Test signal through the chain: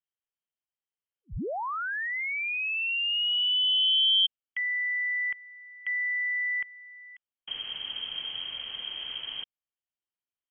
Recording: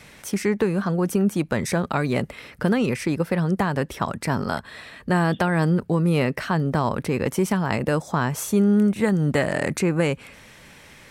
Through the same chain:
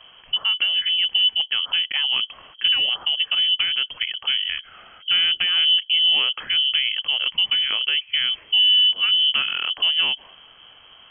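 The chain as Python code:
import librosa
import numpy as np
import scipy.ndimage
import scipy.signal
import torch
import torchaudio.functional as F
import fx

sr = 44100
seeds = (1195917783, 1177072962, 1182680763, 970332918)

y = fx.low_shelf(x, sr, hz=310.0, db=10.5)
y = fx.freq_invert(y, sr, carrier_hz=3200)
y = y * 10.0 ** (-5.5 / 20.0)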